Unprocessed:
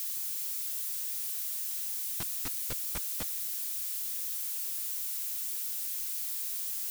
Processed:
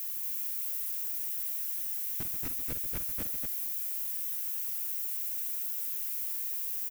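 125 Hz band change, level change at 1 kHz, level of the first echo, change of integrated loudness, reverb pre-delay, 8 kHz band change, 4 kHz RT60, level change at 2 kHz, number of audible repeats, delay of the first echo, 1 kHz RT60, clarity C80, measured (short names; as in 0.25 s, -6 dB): +2.5 dB, -3.5 dB, -9.5 dB, +0.5 dB, none, -4.5 dB, none, -2.0 dB, 3, 48 ms, none, none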